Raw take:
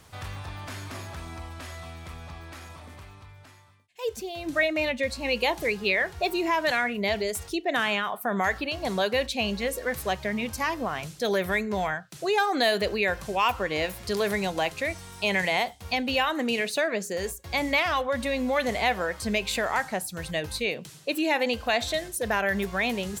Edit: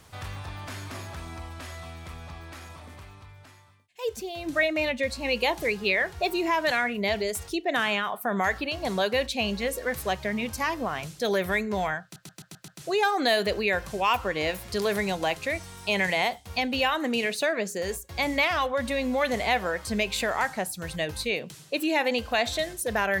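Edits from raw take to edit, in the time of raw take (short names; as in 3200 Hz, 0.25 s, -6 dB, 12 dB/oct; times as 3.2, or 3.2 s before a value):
12.03 stutter 0.13 s, 6 plays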